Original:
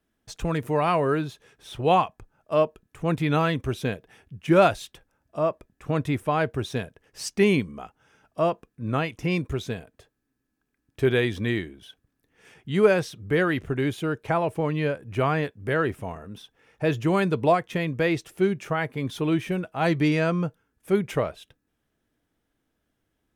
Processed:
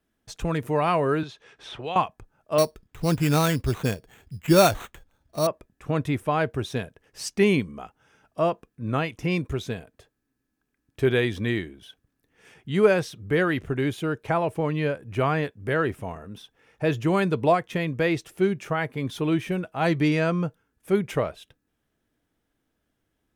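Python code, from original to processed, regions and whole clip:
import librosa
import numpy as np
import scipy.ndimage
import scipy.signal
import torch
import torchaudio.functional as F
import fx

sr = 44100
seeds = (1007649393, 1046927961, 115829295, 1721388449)

y = fx.chain(x, sr, fx.lowpass(hz=5300.0, slope=12),
    fx.low_shelf(hz=310.0, db=-11.0),
    fx.band_squash(depth_pct=70), at=(1.23, 1.96))
y = fx.chain(y, sr, fx.low_shelf(hz=90.0, db=11.0),
    fx.sample_hold(seeds[0], rate_hz=5000.0, jitter_pct=0), at=(2.58, 5.47))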